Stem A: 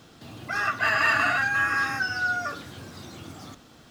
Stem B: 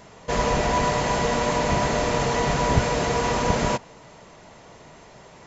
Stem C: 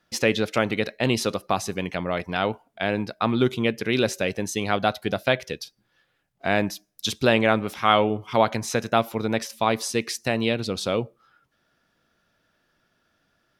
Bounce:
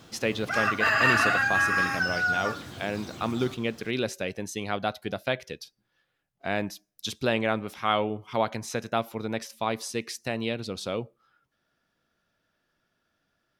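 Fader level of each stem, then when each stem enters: 0.0 dB, mute, -6.5 dB; 0.00 s, mute, 0.00 s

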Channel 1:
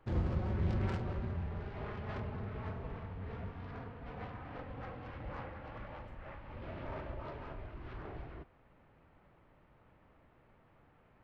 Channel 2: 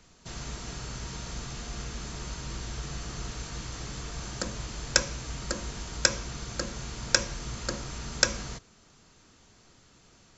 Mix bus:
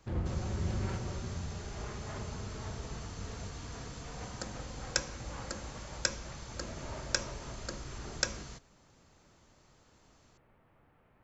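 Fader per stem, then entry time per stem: -1.0 dB, -8.5 dB; 0.00 s, 0.00 s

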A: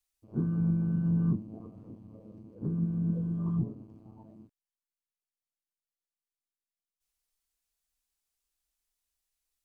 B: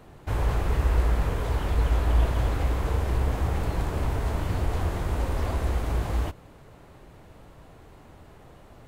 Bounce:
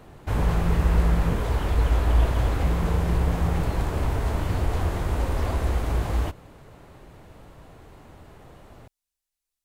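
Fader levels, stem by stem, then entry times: -2.0 dB, +2.0 dB; 0.00 s, 0.00 s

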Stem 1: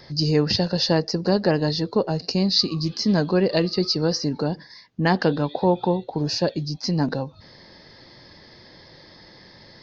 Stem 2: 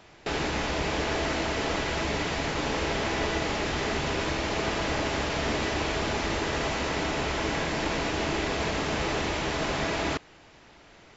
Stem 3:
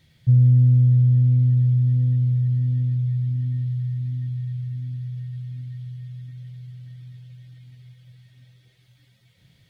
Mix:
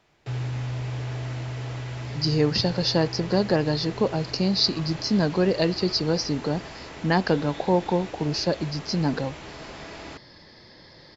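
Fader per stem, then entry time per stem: -2.0 dB, -11.5 dB, -15.5 dB; 2.05 s, 0.00 s, 0.00 s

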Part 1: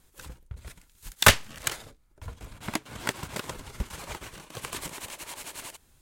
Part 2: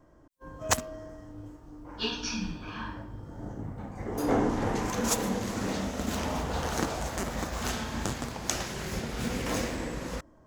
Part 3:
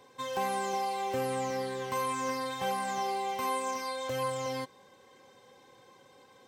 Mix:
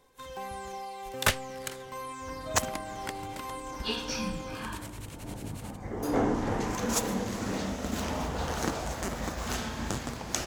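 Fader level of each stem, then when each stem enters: -9.0 dB, -1.0 dB, -7.5 dB; 0.00 s, 1.85 s, 0.00 s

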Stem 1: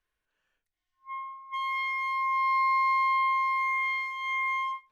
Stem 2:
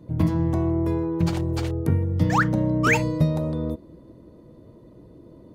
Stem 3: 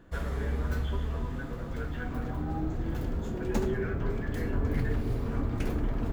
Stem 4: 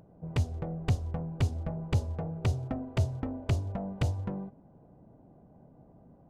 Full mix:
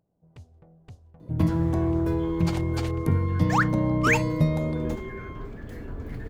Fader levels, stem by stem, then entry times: -16.0 dB, -1.5 dB, -7.0 dB, -18.5 dB; 0.70 s, 1.20 s, 1.35 s, 0.00 s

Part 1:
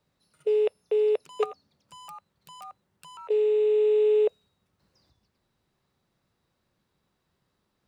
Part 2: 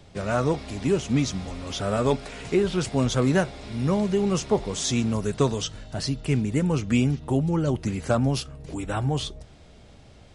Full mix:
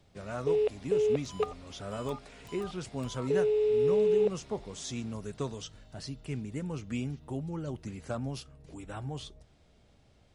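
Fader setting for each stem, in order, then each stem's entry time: -4.0 dB, -13.0 dB; 0.00 s, 0.00 s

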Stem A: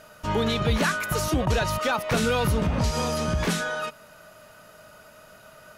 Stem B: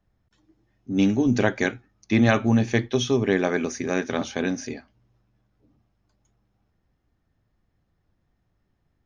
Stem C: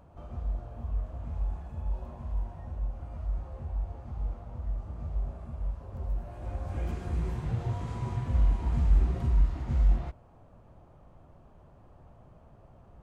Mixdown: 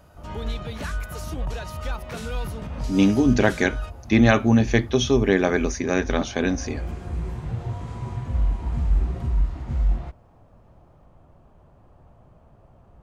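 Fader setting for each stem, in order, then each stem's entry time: -10.5 dB, +2.5 dB, +2.0 dB; 0.00 s, 2.00 s, 0.00 s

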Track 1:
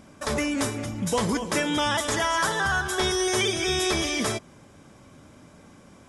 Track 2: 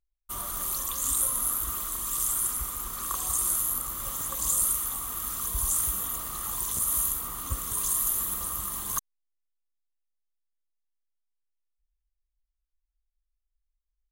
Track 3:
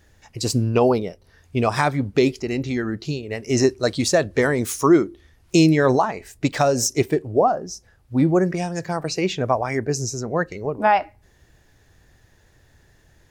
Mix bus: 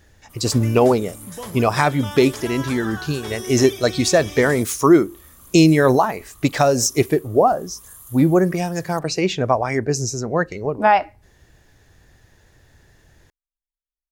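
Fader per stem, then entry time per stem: -9.0 dB, -16.0 dB, +2.5 dB; 0.25 s, 0.00 s, 0.00 s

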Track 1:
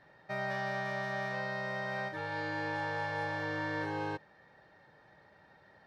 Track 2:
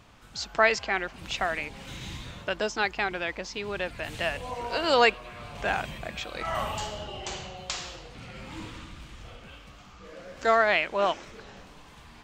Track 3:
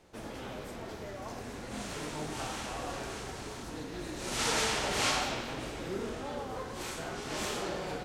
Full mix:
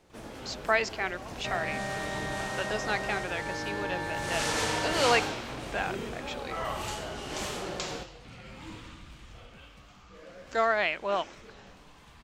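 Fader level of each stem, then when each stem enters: +0.5 dB, -4.0 dB, -1.0 dB; 1.15 s, 0.10 s, 0.00 s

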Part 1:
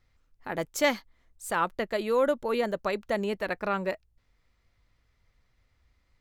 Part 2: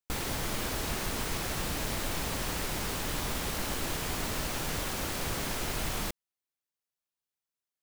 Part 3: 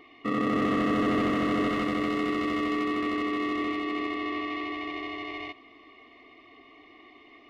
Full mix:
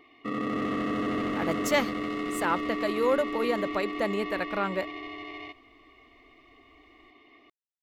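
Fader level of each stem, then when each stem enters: -0.5 dB, mute, -4.0 dB; 0.90 s, mute, 0.00 s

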